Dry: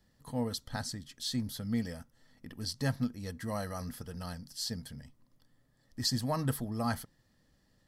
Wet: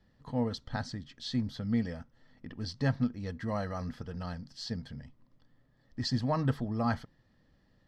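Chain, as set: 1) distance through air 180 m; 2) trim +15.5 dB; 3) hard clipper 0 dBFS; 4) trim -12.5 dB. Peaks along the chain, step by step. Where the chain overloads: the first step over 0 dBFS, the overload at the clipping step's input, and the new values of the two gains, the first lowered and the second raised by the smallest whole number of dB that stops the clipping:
-18.0 dBFS, -2.5 dBFS, -2.5 dBFS, -15.0 dBFS; nothing clips

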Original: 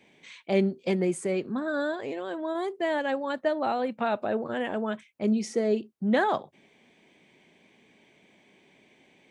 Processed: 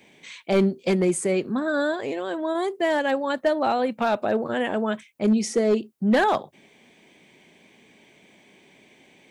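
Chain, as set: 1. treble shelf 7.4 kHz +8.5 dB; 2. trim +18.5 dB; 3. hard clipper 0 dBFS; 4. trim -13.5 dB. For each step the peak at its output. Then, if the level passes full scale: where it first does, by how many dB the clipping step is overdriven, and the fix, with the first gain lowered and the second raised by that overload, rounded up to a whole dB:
-11.5 dBFS, +7.0 dBFS, 0.0 dBFS, -13.5 dBFS; step 2, 7.0 dB; step 2 +11.5 dB, step 4 -6.5 dB

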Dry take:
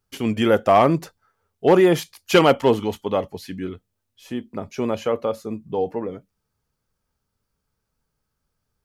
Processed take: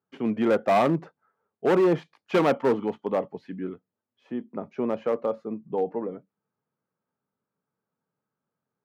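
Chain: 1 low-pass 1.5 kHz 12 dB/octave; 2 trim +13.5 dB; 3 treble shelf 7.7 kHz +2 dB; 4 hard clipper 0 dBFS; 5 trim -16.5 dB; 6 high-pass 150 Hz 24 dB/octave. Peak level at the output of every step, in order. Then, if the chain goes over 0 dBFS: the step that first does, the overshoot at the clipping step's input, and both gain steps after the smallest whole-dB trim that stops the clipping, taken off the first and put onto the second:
-5.5 dBFS, +8.0 dBFS, +8.0 dBFS, 0.0 dBFS, -16.5 dBFS, -9.5 dBFS; step 2, 8.0 dB; step 2 +5.5 dB, step 5 -8.5 dB

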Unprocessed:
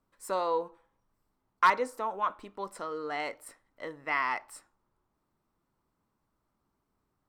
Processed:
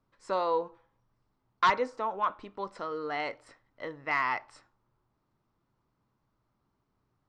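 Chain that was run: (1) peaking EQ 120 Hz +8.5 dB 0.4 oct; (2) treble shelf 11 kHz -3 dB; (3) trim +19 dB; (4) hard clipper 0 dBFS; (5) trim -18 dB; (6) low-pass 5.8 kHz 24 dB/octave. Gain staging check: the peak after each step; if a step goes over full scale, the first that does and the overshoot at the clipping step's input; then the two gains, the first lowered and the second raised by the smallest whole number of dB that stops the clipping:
-14.0 dBFS, -14.0 dBFS, +5.0 dBFS, 0.0 dBFS, -18.0 dBFS, -16.5 dBFS; step 3, 5.0 dB; step 3 +14 dB, step 5 -13 dB

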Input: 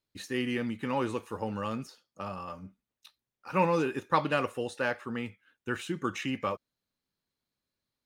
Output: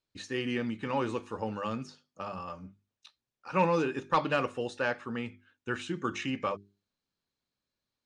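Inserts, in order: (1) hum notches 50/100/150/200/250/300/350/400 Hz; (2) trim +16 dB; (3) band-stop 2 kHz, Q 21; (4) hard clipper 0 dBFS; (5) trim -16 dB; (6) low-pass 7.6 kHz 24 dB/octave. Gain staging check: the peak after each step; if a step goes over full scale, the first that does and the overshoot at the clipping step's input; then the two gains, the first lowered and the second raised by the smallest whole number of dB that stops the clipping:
-10.0 dBFS, +6.0 dBFS, +6.0 dBFS, 0.0 dBFS, -16.0 dBFS, -15.5 dBFS; step 2, 6.0 dB; step 2 +10 dB, step 5 -10 dB

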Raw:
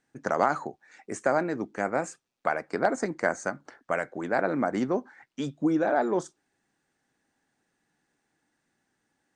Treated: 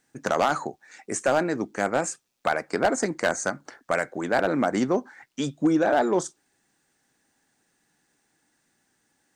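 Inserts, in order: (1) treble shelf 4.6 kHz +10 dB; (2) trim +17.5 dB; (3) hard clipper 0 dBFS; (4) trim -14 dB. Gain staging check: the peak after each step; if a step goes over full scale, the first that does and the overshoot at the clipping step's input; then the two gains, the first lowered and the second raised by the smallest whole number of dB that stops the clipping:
-9.0 dBFS, +8.5 dBFS, 0.0 dBFS, -14.0 dBFS; step 2, 8.5 dB; step 2 +8.5 dB, step 4 -5 dB

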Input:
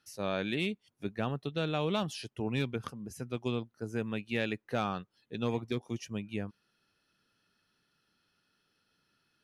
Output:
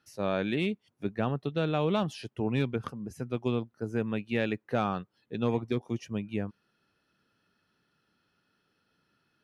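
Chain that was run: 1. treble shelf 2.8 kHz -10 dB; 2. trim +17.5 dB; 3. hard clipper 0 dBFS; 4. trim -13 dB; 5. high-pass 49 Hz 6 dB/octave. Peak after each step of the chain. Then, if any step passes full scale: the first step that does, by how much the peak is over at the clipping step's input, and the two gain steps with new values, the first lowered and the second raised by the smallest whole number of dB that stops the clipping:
-21.0 dBFS, -3.5 dBFS, -3.5 dBFS, -16.5 dBFS, -16.0 dBFS; nothing clips

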